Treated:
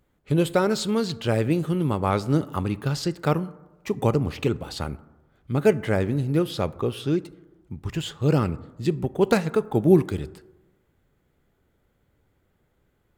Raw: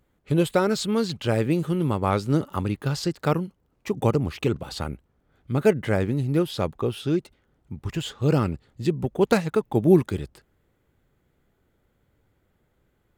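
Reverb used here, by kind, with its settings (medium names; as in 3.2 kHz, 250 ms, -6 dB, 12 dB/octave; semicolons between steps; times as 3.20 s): plate-style reverb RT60 1.1 s, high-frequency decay 0.35×, DRR 16.5 dB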